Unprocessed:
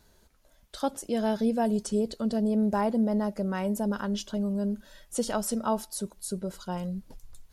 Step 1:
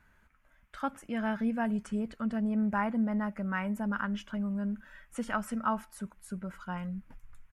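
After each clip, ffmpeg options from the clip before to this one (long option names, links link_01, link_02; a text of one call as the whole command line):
ffmpeg -i in.wav -af "firequalizer=gain_entry='entry(260,0);entry(380,-10);entry(1300,9);entry(2300,8);entry(4000,-15);entry(7400,-11)':delay=0.05:min_phase=1,volume=-3.5dB" out.wav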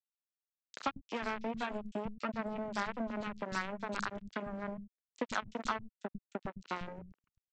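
ffmpeg -i in.wav -filter_complex "[0:a]acompressor=threshold=-41dB:ratio=4,aresample=16000,acrusher=bits=5:mix=0:aa=0.5,aresample=44100,acrossover=split=200|3800[link_01][link_02][link_03];[link_02]adelay=30[link_04];[link_01]adelay=130[link_05];[link_05][link_04][link_03]amix=inputs=3:normalize=0,volume=8dB" out.wav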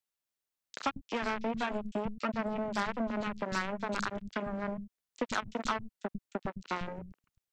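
ffmpeg -i in.wav -af "asoftclip=type=tanh:threshold=-26dB,volume=5dB" out.wav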